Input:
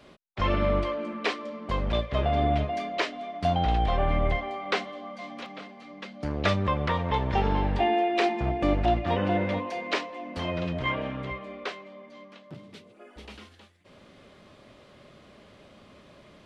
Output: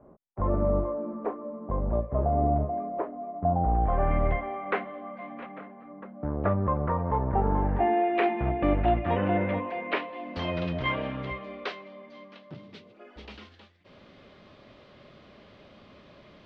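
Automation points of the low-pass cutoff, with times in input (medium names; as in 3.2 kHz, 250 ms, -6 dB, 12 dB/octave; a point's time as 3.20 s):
low-pass 24 dB/octave
3.68 s 1 kHz
4.11 s 2.1 kHz
5.47 s 2.1 kHz
6.11 s 1.3 kHz
7.46 s 1.3 kHz
8.25 s 2.6 kHz
9.89 s 2.6 kHz
10.40 s 5.2 kHz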